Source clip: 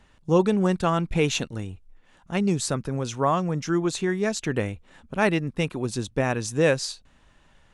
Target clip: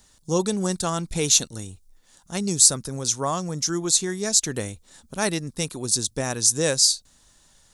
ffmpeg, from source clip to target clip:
ffmpeg -i in.wav -af "aexciter=amount=8.7:drive=4.4:freq=3900,volume=-3.5dB" out.wav

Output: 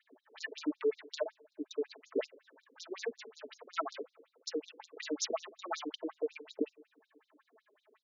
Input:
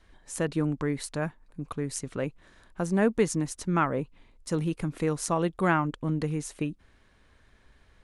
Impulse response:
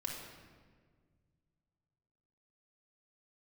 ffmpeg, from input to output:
-filter_complex "[0:a]asplit=2[link_01][link_02];[link_02]aeval=exprs='(mod(9.44*val(0)+1,2)-1)/9.44':channel_layout=same,volume=-11dB[link_03];[link_01][link_03]amix=inputs=2:normalize=0,aphaser=in_gain=1:out_gain=1:delay=4.9:decay=0.61:speed=0.45:type=sinusoidal,adynamicsmooth=sensitivity=8:basefreq=1600,aecho=1:1:4.6:0.56,acompressor=threshold=-24dB:ratio=16,highpass=220,aemphasis=mode=production:type=50fm,asplit=2[link_04][link_05];[1:a]atrim=start_sample=2205[link_06];[link_05][link_06]afir=irnorm=-1:irlink=0,volume=-20dB[link_07];[link_04][link_07]amix=inputs=2:normalize=0,afftfilt=real='re*between(b*sr/1024,350*pow(5200/350,0.5+0.5*sin(2*PI*5.4*pts/sr))/1.41,350*pow(5200/350,0.5+0.5*sin(2*PI*5.4*pts/sr))*1.41)':imag='im*between(b*sr/1024,350*pow(5200/350,0.5+0.5*sin(2*PI*5.4*pts/sr))/1.41,350*pow(5200/350,0.5+0.5*sin(2*PI*5.4*pts/sr))*1.41)':win_size=1024:overlap=0.75"

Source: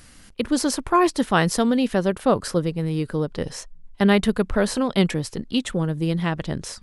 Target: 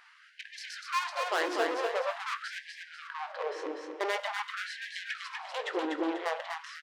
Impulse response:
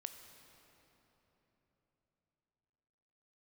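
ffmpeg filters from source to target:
-filter_complex "[0:a]lowpass=2500,asplit=2[link_01][link_02];[link_02]adelay=19,volume=-12dB[link_03];[link_01][link_03]amix=inputs=2:normalize=0,aeval=exprs='(tanh(22.4*val(0)+0.6)-tanh(0.6))/22.4':channel_layout=same,aecho=1:1:245|490|735|980|1225:0.631|0.259|0.106|0.0435|0.0178,asplit=2[link_04][link_05];[1:a]atrim=start_sample=2205,highshelf=frequency=10000:gain=-12[link_06];[link_05][link_06]afir=irnorm=-1:irlink=0,volume=8dB[link_07];[link_04][link_07]amix=inputs=2:normalize=0,afftfilt=real='re*gte(b*sr/1024,280*pow(1600/280,0.5+0.5*sin(2*PI*0.46*pts/sr)))':imag='im*gte(b*sr/1024,280*pow(1600/280,0.5+0.5*sin(2*PI*0.46*pts/sr)))':win_size=1024:overlap=0.75,volume=-5.5dB"

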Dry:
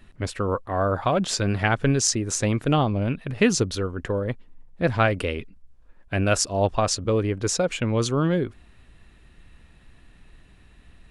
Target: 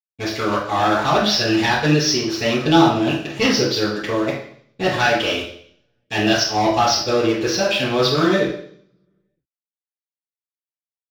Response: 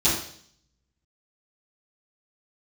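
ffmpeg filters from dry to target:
-filter_complex "[0:a]highpass=frequency=1000:poles=1,aresample=11025,volume=25dB,asoftclip=hard,volume=-25dB,aresample=44100,asetrate=48091,aresample=44100,atempo=0.917004,aeval=exprs='sgn(val(0))*max(abs(val(0))-0.00447,0)':channel_layout=same[link_01];[1:a]atrim=start_sample=2205[link_02];[link_01][link_02]afir=irnorm=-1:irlink=0"

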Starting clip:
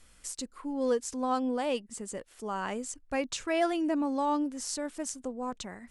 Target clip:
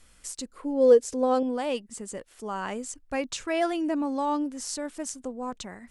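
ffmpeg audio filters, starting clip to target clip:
ffmpeg -i in.wav -filter_complex "[0:a]asettb=1/sr,asplit=3[link_01][link_02][link_03];[link_01]atrim=end=0.544[link_04];[link_02]atrim=start=0.54:end=1.43,asetpts=PTS-STARTPTS,afade=type=in:duration=0.004:curve=qsin,afade=type=out:start_time=0.886:duration=0.004:curve=qsin,equalizer=frequency=125:width_type=o:width=1:gain=4,equalizer=frequency=500:width_type=o:width=1:gain=11,equalizer=frequency=1000:width_type=o:width=1:gain=-4[link_05];[link_03]atrim=start=1.426[link_06];[link_04][link_05]acrossfade=duration=0.004:curve1=hsin:curve2=qsin[link_07];[link_07][link_06]acrossfade=duration=0.004:curve1=qsin:curve2=hsin,volume=1.5dB" out.wav

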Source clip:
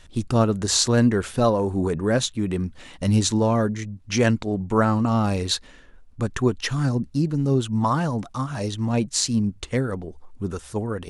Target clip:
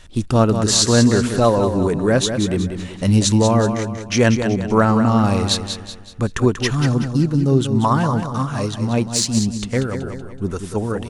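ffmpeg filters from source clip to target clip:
ffmpeg -i in.wav -filter_complex "[0:a]aecho=1:1:188|376|564|752|940:0.398|0.167|0.0702|0.0295|0.0124,asettb=1/sr,asplit=3[link_01][link_02][link_03];[link_01]atrim=end=8.664[link_04];[link_02]atrim=start=8.66:end=10.02,asetpts=PTS-STARTPTS,afade=type=in:duration=0.004:curve=qsin,afade=type=out:start_time=1.356:duration=0.004:curve=qsin,aeval=exprs='0.531*(cos(1*acos(clip(val(0)/0.531,-1,1)))-cos(1*PI/2))+0.0188*(cos(7*acos(clip(val(0)/0.531,-1,1)))-cos(7*PI/2))':channel_layout=same[link_05];[link_03]atrim=start=10.016[link_06];[link_04][link_05]acrossfade=duration=0.004:curve1=hsin:curve2=qsin[link_07];[link_07][link_06]acrossfade=duration=0.004:curve1=qsin:curve2=hsin,volume=4.5dB" out.wav

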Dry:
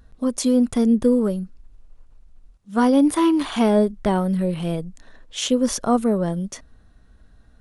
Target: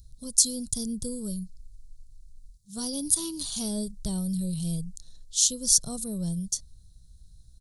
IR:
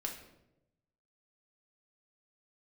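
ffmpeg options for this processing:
-af "firequalizer=gain_entry='entry(150,0);entry(240,-18);entry(590,-21);entry(850,-25);entry(2100,-28);entry(4100,5);entry(8200,10)':delay=0.05:min_phase=1"

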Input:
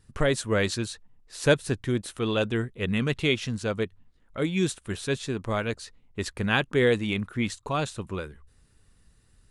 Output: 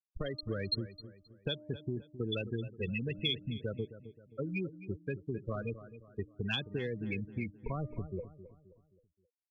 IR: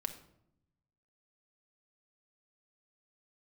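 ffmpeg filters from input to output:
-filter_complex "[0:a]asettb=1/sr,asplit=3[link_01][link_02][link_03];[link_01]atrim=end=7.574[link_04];[link_02]atrim=start=7.57:end=8.1,asetpts=PTS-STARTPTS,afade=type=in:duration=0.004:curve=qsin,afade=type=out:start_time=0.526:duration=0.004:curve=qsin,aemphasis=mode=reproduction:type=riaa[link_05];[link_03]atrim=start=8.096[link_06];[link_04][link_05]acrossfade=duration=0.004:curve1=hsin:curve2=qsin[link_07];[link_07][link_06]acrossfade=duration=0.004:curve1=qsin:curve2=hsin,afftfilt=real='re*gte(hypot(re,im),0.126)':imag='im*gte(hypot(re,im),0.126)':win_size=1024:overlap=0.75,bandreject=frequency=303:width_type=h:width=4,bandreject=frequency=606:width_type=h:width=4,bandreject=frequency=909:width_type=h:width=4,bandreject=frequency=1212:width_type=h:width=4,acompressor=threshold=-27dB:ratio=6,aexciter=amount=12.9:drive=2.7:freq=3200,acrossover=split=160|330|3600[link_08][link_09][link_10][link_11];[link_08]acompressor=threshold=-37dB:ratio=4[link_12];[link_09]acompressor=threshold=-44dB:ratio=4[link_13];[link_10]acompressor=threshold=-37dB:ratio=4[link_14];[link_11]acompressor=threshold=-43dB:ratio=4[link_15];[link_12][link_13][link_14][link_15]amix=inputs=4:normalize=0,asplit=2[link_16][link_17];[link_17]adelay=264,lowpass=frequency=2600:poles=1,volume=-13.5dB,asplit=2[link_18][link_19];[link_19]adelay=264,lowpass=frequency=2600:poles=1,volume=0.41,asplit=2[link_20][link_21];[link_21]adelay=264,lowpass=frequency=2600:poles=1,volume=0.41,asplit=2[link_22][link_23];[link_23]adelay=264,lowpass=frequency=2600:poles=1,volume=0.41[link_24];[link_18][link_20][link_22][link_24]amix=inputs=4:normalize=0[link_25];[link_16][link_25]amix=inputs=2:normalize=0,adynamicequalizer=threshold=0.00562:dfrequency=2800:dqfactor=0.7:tfrequency=2800:tqfactor=0.7:attack=5:release=100:ratio=0.375:range=3:mode=boostabove:tftype=highshelf,volume=-1.5dB"

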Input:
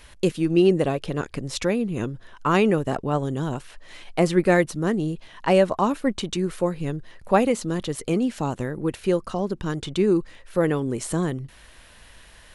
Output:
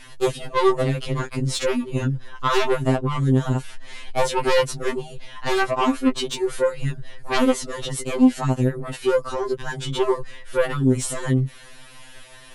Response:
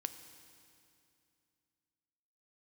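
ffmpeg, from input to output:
-af "aeval=exprs='0.531*sin(PI/2*3.55*val(0)/0.531)':channel_layout=same,afftfilt=real='re*2.45*eq(mod(b,6),0)':imag='im*2.45*eq(mod(b,6),0)':win_size=2048:overlap=0.75,volume=-7.5dB"

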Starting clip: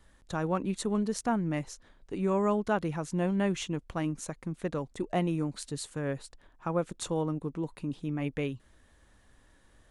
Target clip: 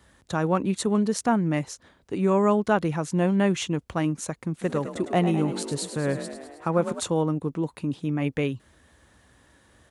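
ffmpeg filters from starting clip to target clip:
ffmpeg -i in.wav -filter_complex "[0:a]highpass=frequency=61:width=0.5412,highpass=frequency=61:width=1.3066,asplit=3[link_01][link_02][link_03];[link_01]afade=type=out:start_time=4.61:duration=0.02[link_04];[link_02]asplit=9[link_05][link_06][link_07][link_08][link_09][link_10][link_11][link_12][link_13];[link_06]adelay=105,afreqshift=39,volume=-10dB[link_14];[link_07]adelay=210,afreqshift=78,volume=-13.9dB[link_15];[link_08]adelay=315,afreqshift=117,volume=-17.8dB[link_16];[link_09]adelay=420,afreqshift=156,volume=-21.6dB[link_17];[link_10]adelay=525,afreqshift=195,volume=-25.5dB[link_18];[link_11]adelay=630,afreqshift=234,volume=-29.4dB[link_19];[link_12]adelay=735,afreqshift=273,volume=-33.3dB[link_20];[link_13]adelay=840,afreqshift=312,volume=-37.1dB[link_21];[link_05][link_14][link_15][link_16][link_17][link_18][link_19][link_20][link_21]amix=inputs=9:normalize=0,afade=type=in:start_time=4.61:duration=0.02,afade=type=out:start_time=6.99:duration=0.02[link_22];[link_03]afade=type=in:start_time=6.99:duration=0.02[link_23];[link_04][link_22][link_23]amix=inputs=3:normalize=0,volume=6.5dB" out.wav

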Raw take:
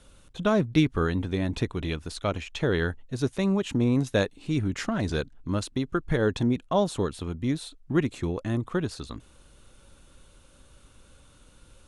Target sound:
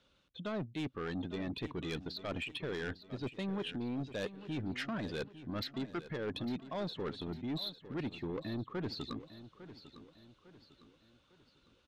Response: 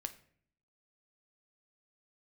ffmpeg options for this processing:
-filter_complex "[0:a]lowpass=frequency=4200:width=0.5412,lowpass=frequency=4200:width=1.3066,aemphasis=mode=production:type=75fm,afftdn=noise_reduction=15:noise_floor=-37,highpass=140,areverse,acompressor=threshold=-33dB:ratio=16,areverse,asoftclip=type=tanh:threshold=-35dB,asplit=2[link_01][link_02];[link_02]aecho=0:1:853|1706|2559|3412:0.2|0.0838|0.0352|0.0148[link_03];[link_01][link_03]amix=inputs=2:normalize=0,volume=2.5dB"

